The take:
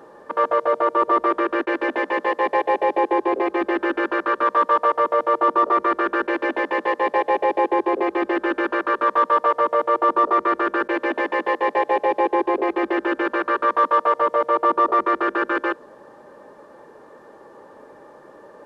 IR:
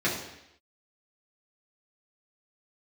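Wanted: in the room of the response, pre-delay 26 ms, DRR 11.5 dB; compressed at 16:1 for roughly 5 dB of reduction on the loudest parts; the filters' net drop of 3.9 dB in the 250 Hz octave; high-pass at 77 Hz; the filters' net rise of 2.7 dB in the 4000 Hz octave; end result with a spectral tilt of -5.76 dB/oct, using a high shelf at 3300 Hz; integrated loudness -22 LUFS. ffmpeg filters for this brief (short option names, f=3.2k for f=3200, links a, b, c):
-filter_complex "[0:a]highpass=77,equalizer=f=250:t=o:g=-7,highshelf=f=3.3k:g=-4.5,equalizer=f=4k:t=o:g=7.5,acompressor=threshold=-19dB:ratio=16,asplit=2[a][b];[1:a]atrim=start_sample=2205,adelay=26[c];[b][c]afir=irnorm=-1:irlink=0,volume=-23.5dB[d];[a][d]amix=inputs=2:normalize=0,volume=2.5dB"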